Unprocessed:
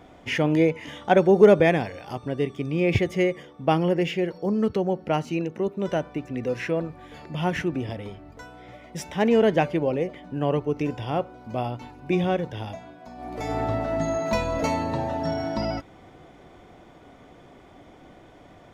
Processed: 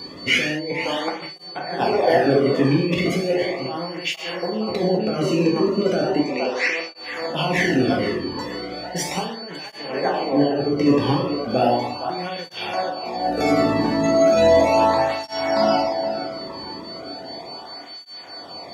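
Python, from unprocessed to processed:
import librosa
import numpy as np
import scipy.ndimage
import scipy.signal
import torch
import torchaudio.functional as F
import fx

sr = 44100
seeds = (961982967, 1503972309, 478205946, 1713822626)

y = fx.echo_banded(x, sr, ms=464, feedback_pct=57, hz=980.0, wet_db=-8.5)
y = fx.over_compress(y, sr, threshold_db=-26.0, ratio=-0.5)
y = fx.cabinet(y, sr, low_hz=340.0, low_slope=12, high_hz=7700.0, hz=(690.0, 1600.0, 2400.0, 4900.0), db=(-3, -4, 6, 4), at=(6.2, 6.96))
y = y + 10.0 ** (-37.0 / 20.0) * np.sin(2.0 * np.pi * 4500.0 * np.arange(len(y)) / sr)
y = fx.rev_gated(y, sr, seeds[0], gate_ms=240, shape='falling', drr_db=-1.5)
y = fx.flanger_cancel(y, sr, hz=0.36, depth_ms=1.5)
y = y * 10.0 ** (6.5 / 20.0)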